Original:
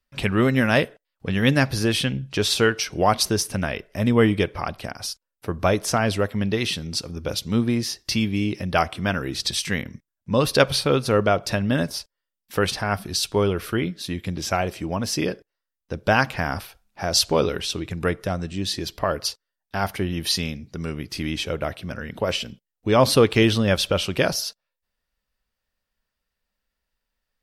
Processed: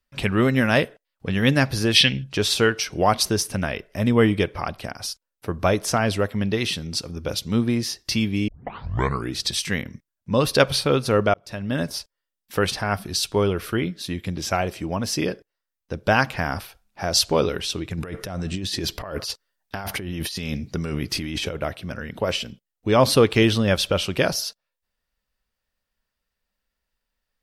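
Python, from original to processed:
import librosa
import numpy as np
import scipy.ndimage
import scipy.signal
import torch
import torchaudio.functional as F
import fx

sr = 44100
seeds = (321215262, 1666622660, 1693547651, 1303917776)

y = fx.spec_box(x, sr, start_s=1.96, length_s=0.27, low_hz=1700.0, high_hz=6000.0, gain_db=11)
y = fx.over_compress(y, sr, threshold_db=-31.0, ratio=-1.0, at=(17.97, 21.55), fade=0.02)
y = fx.edit(y, sr, fx.tape_start(start_s=8.48, length_s=0.85),
    fx.fade_in_span(start_s=11.34, length_s=0.58), tone=tone)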